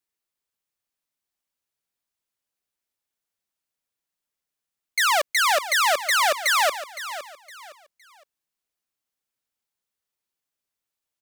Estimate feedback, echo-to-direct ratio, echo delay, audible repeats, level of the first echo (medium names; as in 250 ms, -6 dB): 30%, -12.5 dB, 513 ms, 3, -13.0 dB